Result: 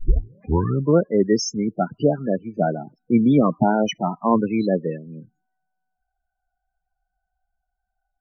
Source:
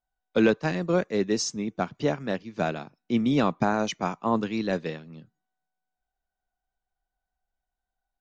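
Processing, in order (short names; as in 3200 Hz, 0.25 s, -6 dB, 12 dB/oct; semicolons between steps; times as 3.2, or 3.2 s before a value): tape start at the beginning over 1.03 s; loudest bins only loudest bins 16; gain +7.5 dB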